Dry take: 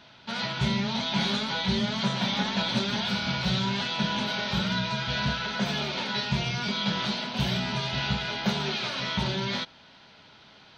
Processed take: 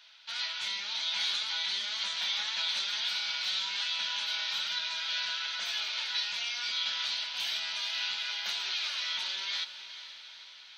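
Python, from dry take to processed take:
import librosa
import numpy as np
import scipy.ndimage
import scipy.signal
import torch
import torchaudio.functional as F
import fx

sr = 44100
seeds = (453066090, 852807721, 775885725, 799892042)

y = scipy.signal.sosfilt(scipy.signal.bessel(2, 2600.0, 'highpass', norm='mag', fs=sr, output='sos'), x)
y = fx.echo_diffused(y, sr, ms=462, feedback_pct=59, wet_db=-12.5)
y = y * 10.0 ** (1.0 / 20.0)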